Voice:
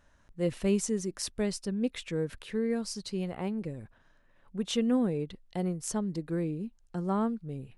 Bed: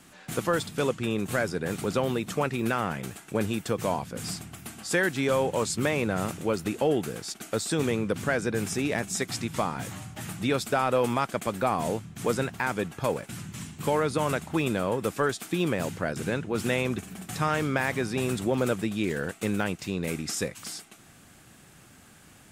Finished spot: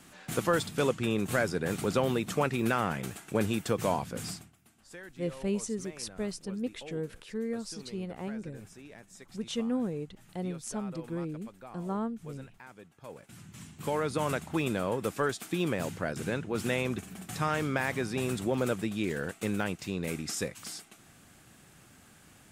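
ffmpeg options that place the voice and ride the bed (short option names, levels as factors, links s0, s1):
-filter_complex "[0:a]adelay=4800,volume=0.631[s0];[1:a]volume=7.5,afade=t=out:st=4.15:d=0.39:silence=0.0891251,afade=t=in:st=13:d=1.24:silence=0.11885[s1];[s0][s1]amix=inputs=2:normalize=0"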